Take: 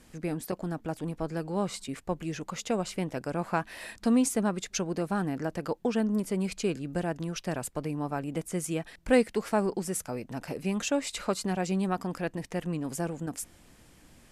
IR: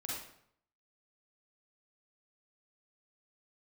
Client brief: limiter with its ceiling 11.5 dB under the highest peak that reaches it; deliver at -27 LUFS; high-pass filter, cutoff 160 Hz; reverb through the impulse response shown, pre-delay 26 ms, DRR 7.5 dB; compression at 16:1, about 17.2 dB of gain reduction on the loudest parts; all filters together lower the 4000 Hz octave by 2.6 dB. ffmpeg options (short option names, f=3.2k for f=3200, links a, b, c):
-filter_complex "[0:a]highpass=160,equalizer=f=4k:t=o:g=-3.5,acompressor=threshold=-34dB:ratio=16,alimiter=level_in=9dB:limit=-24dB:level=0:latency=1,volume=-9dB,asplit=2[a][b];[1:a]atrim=start_sample=2205,adelay=26[c];[b][c]afir=irnorm=-1:irlink=0,volume=-8dB[d];[a][d]amix=inputs=2:normalize=0,volume=16dB"